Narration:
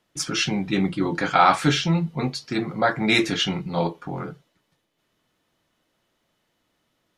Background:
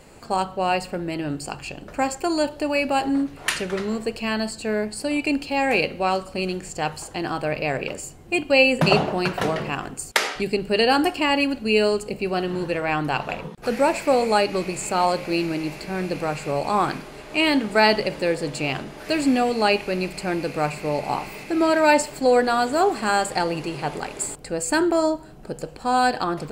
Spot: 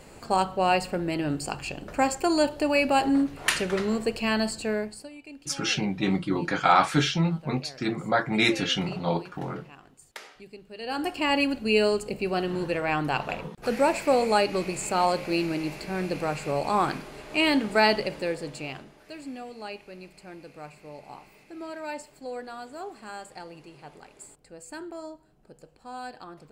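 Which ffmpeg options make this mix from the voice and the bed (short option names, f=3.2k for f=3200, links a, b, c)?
-filter_complex "[0:a]adelay=5300,volume=-3dB[a];[1:a]volume=18.5dB,afade=t=out:st=4.54:d=0.57:silence=0.0841395,afade=t=in:st=10.79:d=0.56:silence=0.112202,afade=t=out:st=17.68:d=1.41:silence=0.158489[b];[a][b]amix=inputs=2:normalize=0"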